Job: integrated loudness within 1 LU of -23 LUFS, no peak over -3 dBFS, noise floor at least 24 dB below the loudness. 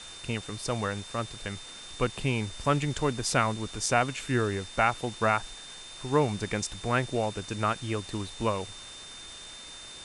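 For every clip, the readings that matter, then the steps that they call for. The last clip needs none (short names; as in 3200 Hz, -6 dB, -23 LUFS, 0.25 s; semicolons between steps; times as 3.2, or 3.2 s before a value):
steady tone 3600 Hz; tone level -45 dBFS; noise floor -45 dBFS; noise floor target -54 dBFS; loudness -29.5 LUFS; peak -8.5 dBFS; loudness target -23.0 LUFS
-> notch 3600 Hz, Q 30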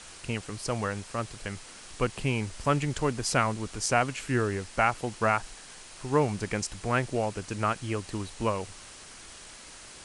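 steady tone none; noise floor -48 dBFS; noise floor target -54 dBFS
-> denoiser 6 dB, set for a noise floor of -48 dBFS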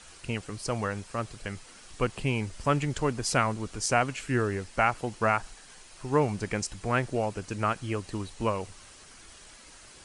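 noise floor -51 dBFS; noise floor target -54 dBFS
-> denoiser 6 dB, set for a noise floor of -51 dBFS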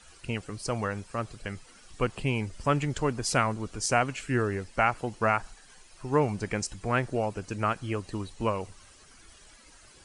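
noise floor -55 dBFS; loudness -30.0 LUFS; peak -9.0 dBFS; loudness target -23.0 LUFS
-> gain +7 dB; limiter -3 dBFS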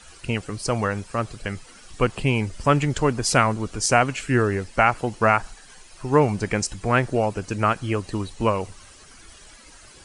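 loudness -23.0 LUFS; peak -3.0 dBFS; noise floor -48 dBFS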